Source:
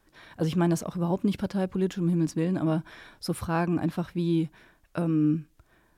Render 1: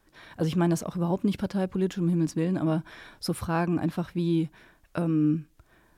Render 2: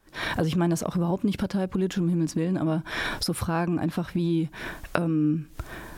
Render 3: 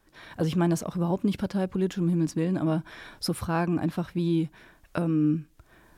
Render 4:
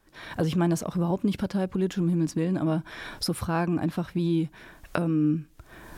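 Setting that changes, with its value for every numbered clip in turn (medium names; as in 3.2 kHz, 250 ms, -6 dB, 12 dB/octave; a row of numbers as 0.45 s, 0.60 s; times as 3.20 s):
recorder AGC, rising by: 5.1 dB/s, 90 dB/s, 14 dB/s, 35 dB/s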